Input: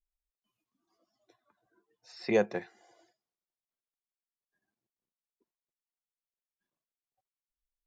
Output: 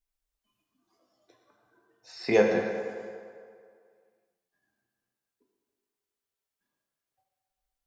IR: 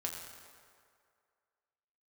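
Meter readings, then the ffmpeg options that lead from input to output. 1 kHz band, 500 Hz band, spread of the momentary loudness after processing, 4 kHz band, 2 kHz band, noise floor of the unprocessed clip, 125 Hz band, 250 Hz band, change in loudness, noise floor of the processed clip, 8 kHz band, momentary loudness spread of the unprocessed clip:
+5.5 dB, +6.5 dB, 20 LU, +6.0 dB, +6.5 dB, under -85 dBFS, +4.0 dB, +4.5 dB, +4.5 dB, under -85 dBFS, no reading, 13 LU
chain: -filter_complex "[1:a]atrim=start_sample=2205[s0];[0:a][s0]afir=irnorm=-1:irlink=0,volume=1.88"

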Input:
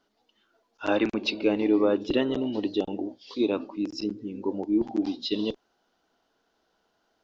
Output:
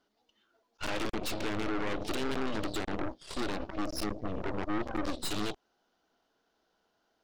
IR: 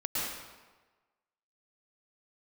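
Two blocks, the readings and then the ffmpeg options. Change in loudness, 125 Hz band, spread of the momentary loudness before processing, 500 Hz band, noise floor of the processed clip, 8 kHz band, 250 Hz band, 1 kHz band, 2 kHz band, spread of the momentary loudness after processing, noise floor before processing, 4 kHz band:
-8.0 dB, 0.0 dB, 10 LU, -10.0 dB, -77 dBFS, no reading, -10.0 dB, 0.0 dB, -2.0 dB, 4 LU, -73 dBFS, -4.0 dB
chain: -filter_complex "[0:a]asplit=2[s0][s1];[s1]acompressor=threshold=0.0316:ratio=6,volume=1[s2];[s0][s2]amix=inputs=2:normalize=0,alimiter=limit=0.126:level=0:latency=1:release=17,aeval=exprs='0.126*(cos(1*acos(clip(val(0)/0.126,-1,1)))-cos(1*PI/2))+0.0178*(cos(3*acos(clip(val(0)/0.126,-1,1)))-cos(3*PI/2))+0.0447*(cos(4*acos(clip(val(0)/0.126,-1,1)))-cos(4*PI/2))+0.00562*(cos(7*acos(clip(val(0)/0.126,-1,1)))-cos(7*PI/2))':c=same,asoftclip=type=tanh:threshold=0.0376,volume=1.26"

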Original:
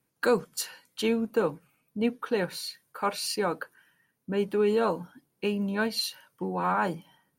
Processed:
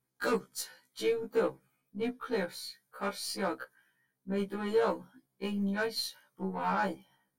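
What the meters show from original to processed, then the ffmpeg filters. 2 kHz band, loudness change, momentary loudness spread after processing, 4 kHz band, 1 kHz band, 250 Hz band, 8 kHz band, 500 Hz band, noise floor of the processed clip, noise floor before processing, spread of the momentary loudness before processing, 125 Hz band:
-4.0 dB, -5.0 dB, 12 LU, -5.5 dB, -4.5 dB, -5.5 dB, -5.5 dB, -5.0 dB, -82 dBFS, -76 dBFS, 12 LU, -4.0 dB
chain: -af "asuperstop=centerf=2700:order=8:qfactor=7.4,aeval=exprs='0.251*(cos(1*acos(clip(val(0)/0.251,-1,1)))-cos(1*PI/2))+0.0316*(cos(5*acos(clip(val(0)/0.251,-1,1)))-cos(5*PI/2))+0.0141*(cos(6*acos(clip(val(0)/0.251,-1,1)))-cos(6*PI/2))+0.0282*(cos(7*acos(clip(val(0)/0.251,-1,1)))-cos(7*PI/2))+0.0126*(cos(8*acos(clip(val(0)/0.251,-1,1)))-cos(8*PI/2))':c=same,afftfilt=real='re*1.73*eq(mod(b,3),0)':imag='im*1.73*eq(mod(b,3),0)':win_size=2048:overlap=0.75,volume=0.708"

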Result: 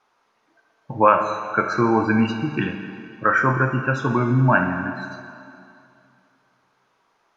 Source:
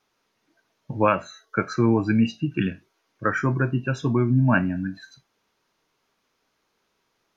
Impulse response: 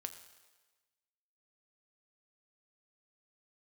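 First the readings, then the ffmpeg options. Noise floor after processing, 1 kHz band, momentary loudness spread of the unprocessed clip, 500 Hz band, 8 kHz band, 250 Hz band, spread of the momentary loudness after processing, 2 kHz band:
-67 dBFS, +8.5 dB, 9 LU, +4.0 dB, no reading, +0.5 dB, 16 LU, +6.5 dB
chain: -filter_complex "[0:a]equalizer=f=990:w=0.63:g=13,asplit=2[s0][s1];[s1]alimiter=limit=0.473:level=0:latency=1,volume=1.12[s2];[s0][s2]amix=inputs=2:normalize=0[s3];[1:a]atrim=start_sample=2205,asetrate=22050,aresample=44100[s4];[s3][s4]afir=irnorm=-1:irlink=0,volume=0.355"

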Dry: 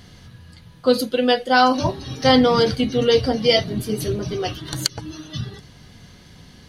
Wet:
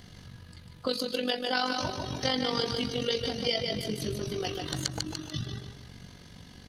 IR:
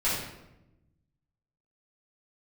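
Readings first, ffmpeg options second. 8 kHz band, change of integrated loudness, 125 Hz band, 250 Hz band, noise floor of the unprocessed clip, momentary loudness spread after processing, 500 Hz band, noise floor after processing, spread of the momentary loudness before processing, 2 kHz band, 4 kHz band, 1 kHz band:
-7.0 dB, -12.0 dB, -9.5 dB, -13.0 dB, -47 dBFS, 20 LU, -13.5 dB, -51 dBFS, 16 LU, -10.5 dB, -7.5 dB, -14.5 dB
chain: -filter_complex "[0:a]aecho=1:1:146|292|438|584:0.447|0.17|0.0645|0.0245,acrossover=split=1900|7600[s0][s1][s2];[s0]acompressor=threshold=0.0501:ratio=4[s3];[s1]acompressor=threshold=0.0562:ratio=4[s4];[s2]acompressor=threshold=0.00447:ratio=4[s5];[s3][s4][s5]amix=inputs=3:normalize=0,tremolo=f=47:d=0.621,volume=0.794"

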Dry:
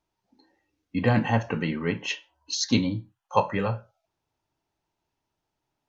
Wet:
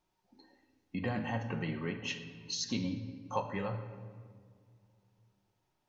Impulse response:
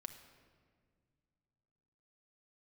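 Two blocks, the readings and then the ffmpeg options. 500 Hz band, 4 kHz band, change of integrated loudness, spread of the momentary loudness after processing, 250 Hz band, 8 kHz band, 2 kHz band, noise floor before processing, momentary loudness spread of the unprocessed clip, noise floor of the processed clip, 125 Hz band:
-11.0 dB, -8.5 dB, -10.5 dB, 13 LU, -10.5 dB, no reading, -10.0 dB, -83 dBFS, 10 LU, -80 dBFS, -10.5 dB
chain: -filter_complex "[0:a]acompressor=threshold=0.00794:ratio=2[s0];[1:a]atrim=start_sample=2205[s1];[s0][s1]afir=irnorm=-1:irlink=0,volume=1.78"

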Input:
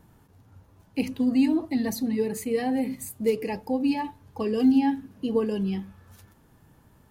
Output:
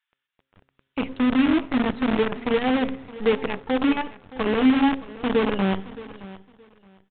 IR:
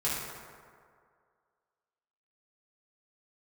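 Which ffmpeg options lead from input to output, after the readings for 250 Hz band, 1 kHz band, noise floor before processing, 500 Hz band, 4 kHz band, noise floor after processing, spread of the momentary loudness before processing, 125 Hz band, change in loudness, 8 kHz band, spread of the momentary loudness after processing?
+2.5 dB, +6.5 dB, -59 dBFS, +3.5 dB, +8.5 dB, -84 dBFS, 10 LU, +3.5 dB, +3.5 dB, under -40 dB, 15 LU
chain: -filter_complex "[0:a]acrossover=split=1800[s0][s1];[s0]acrusher=bits=5:dc=4:mix=0:aa=0.000001[s2];[s2][s1]amix=inputs=2:normalize=0,bandreject=f=133.9:t=h:w=4,bandreject=f=267.8:t=h:w=4,bandreject=f=401.7:t=h:w=4,bandreject=f=535.6:t=h:w=4,asplit=2[s3][s4];[1:a]atrim=start_sample=2205[s5];[s4][s5]afir=irnorm=-1:irlink=0,volume=0.0282[s6];[s3][s6]amix=inputs=2:normalize=0,aresample=8000,aresample=44100,dynaudnorm=f=160:g=11:m=3.98,aecho=1:1:620|1240:0.133|0.028,volume=0.473"

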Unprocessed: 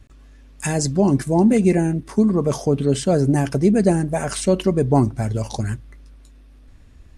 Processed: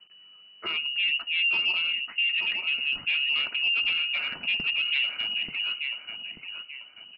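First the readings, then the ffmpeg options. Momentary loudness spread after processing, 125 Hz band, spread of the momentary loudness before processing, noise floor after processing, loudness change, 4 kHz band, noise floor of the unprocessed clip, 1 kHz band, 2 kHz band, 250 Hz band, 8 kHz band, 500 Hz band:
13 LU, under -35 dB, 9 LU, -53 dBFS, -5.5 dB, +13.5 dB, -46 dBFS, -17.5 dB, +10.5 dB, -35.5 dB, under -40 dB, -33.0 dB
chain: -filter_complex "[0:a]lowpass=f=2600:t=q:w=0.5098,lowpass=f=2600:t=q:w=0.6013,lowpass=f=2600:t=q:w=0.9,lowpass=f=2600:t=q:w=2.563,afreqshift=-3000,equalizer=f=170:w=0.88:g=12,asplit=2[s0][s1];[s1]adelay=886,lowpass=f=2100:p=1,volume=0.562,asplit=2[s2][s3];[s3]adelay=886,lowpass=f=2100:p=1,volume=0.44,asplit=2[s4][s5];[s5]adelay=886,lowpass=f=2100:p=1,volume=0.44,asplit=2[s6][s7];[s7]adelay=886,lowpass=f=2100:p=1,volume=0.44,asplit=2[s8][s9];[s9]adelay=886,lowpass=f=2100:p=1,volume=0.44[s10];[s0][s2][s4][s6][s8][s10]amix=inputs=6:normalize=0,aresample=11025,asoftclip=type=tanh:threshold=0.211,aresample=44100,volume=0.447"

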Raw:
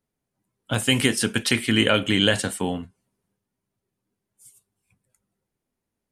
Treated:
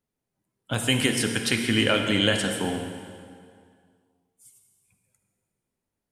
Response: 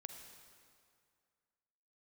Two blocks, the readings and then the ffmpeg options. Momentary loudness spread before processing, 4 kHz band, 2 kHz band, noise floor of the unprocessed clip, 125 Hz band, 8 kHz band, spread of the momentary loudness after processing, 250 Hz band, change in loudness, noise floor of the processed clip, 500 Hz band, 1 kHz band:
10 LU, -2.0 dB, -2.0 dB, -83 dBFS, -2.0 dB, -2.0 dB, 11 LU, -2.0 dB, -2.0 dB, -85 dBFS, -2.0 dB, -1.5 dB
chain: -filter_complex "[1:a]atrim=start_sample=2205[s0];[0:a][s0]afir=irnorm=-1:irlink=0,volume=1.41"

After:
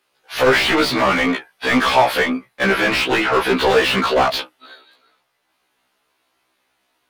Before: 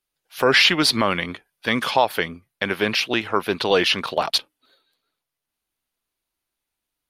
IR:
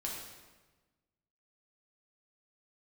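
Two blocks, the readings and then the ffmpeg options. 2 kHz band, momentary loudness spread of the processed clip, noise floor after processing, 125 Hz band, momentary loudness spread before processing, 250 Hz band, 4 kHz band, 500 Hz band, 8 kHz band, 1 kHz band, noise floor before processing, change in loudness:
+4.5 dB, 6 LU, -69 dBFS, +3.0 dB, 12 LU, +5.5 dB, -0.5 dB, +5.0 dB, +0.5 dB, +6.0 dB, -83 dBFS, +3.5 dB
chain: -filter_complex "[0:a]asplit=2[s0][s1];[s1]highpass=f=720:p=1,volume=44.7,asoftclip=type=tanh:threshold=0.708[s2];[s0][s2]amix=inputs=2:normalize=0,lowpass=f=1400:p=1,volume=0.501,afftfilt=real='re*1.73*eq(mod(b,3),0)':imag='im*1.73*eq(mod(b,3),0)':win_size=2048:overlap=0.75"

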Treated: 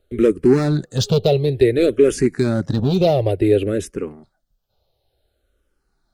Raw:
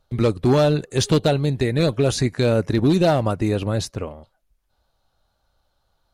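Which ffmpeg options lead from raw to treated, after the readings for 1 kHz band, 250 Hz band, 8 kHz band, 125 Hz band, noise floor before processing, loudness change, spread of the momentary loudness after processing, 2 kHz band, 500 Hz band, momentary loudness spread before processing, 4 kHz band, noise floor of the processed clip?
-2.5 dB, +2.5 dB, -1.5 dB, 0.0 dB, -70 dBFS, +2.5 dB, 8 LU, -1.0 dB, +4.0 dB, 8 LU, -1.5 dB, -71 dBFS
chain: -filter_complex "[0:a]volume=4.73,asoftclip=hard,volume=0.211,equalizer=f=400:t=o:w=0.67:g=9,equalizer=f=1000:t=o:w=0.67:g=-10,equalizer=f=6300:t=o:w=0.67:g=-4,asplit=2[s0][s1];[s1]afreqshift=-0.56[s2];[s0][s2]amix=inputs=2:normalize=1,volume=1.5"

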